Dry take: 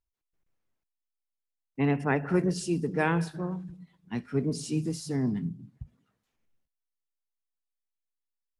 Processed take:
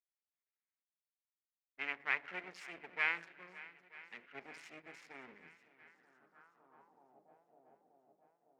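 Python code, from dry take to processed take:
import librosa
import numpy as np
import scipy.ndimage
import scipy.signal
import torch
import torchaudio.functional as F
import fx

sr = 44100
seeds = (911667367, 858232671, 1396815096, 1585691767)

p1 = fx.wiener(x, sr, points=15)
p2 = scipy.signal.sosfilt(scipy.signal.butter(2, 210.0, 'highpass', fs=sr, output='sos'), p1)
p3 = fx.hum_notches(p2, sr, base_hz=50, count=7)
p4 = np.maximum(p3, 0.0)
p5 = p4 + fx.echo_swing(p4, sr, ms=932, ratio=1.5, feedback_pct=56, wet_db=-19.0, dry=0)
p6 = fx.filter_sweep_bandpass(p5, sr, from_hz=2200.0, to_hz=710.0, start_s=5.75, end_s=7.29, q=3.9)
y = p6 * 10.0 ** (6.5 / 20.0)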